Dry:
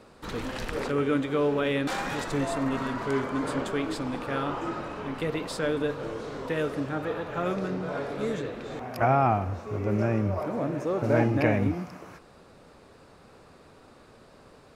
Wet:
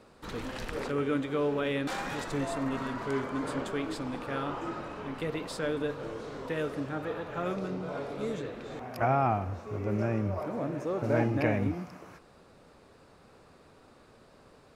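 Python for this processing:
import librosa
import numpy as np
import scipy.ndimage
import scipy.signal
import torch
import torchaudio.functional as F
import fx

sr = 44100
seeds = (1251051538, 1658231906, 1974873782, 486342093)

y = fx.peak_eq(x, sr, hz=1700.0, db=-6.0, octaves=0.33, at=(7.56, 8.41))
y = F.gain(torch.from_numpy(y), -4.0).numpy()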